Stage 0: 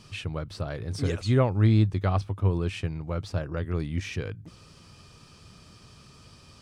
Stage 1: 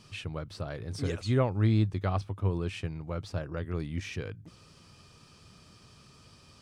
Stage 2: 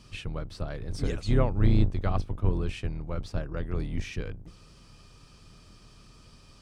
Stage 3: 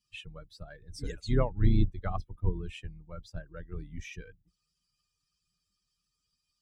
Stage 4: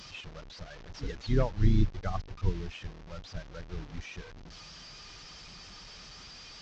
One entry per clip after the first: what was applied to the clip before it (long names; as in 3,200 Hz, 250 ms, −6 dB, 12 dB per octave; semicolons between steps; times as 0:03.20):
low-shelf EQ 67 Hz −5 dB; level −3.5 dB
sub-octave generator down 2 octaves, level +3 dB
spectral dynamics exaggerated over time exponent 2
linear delta modulator 32 kbit/s, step −41.5 dBFS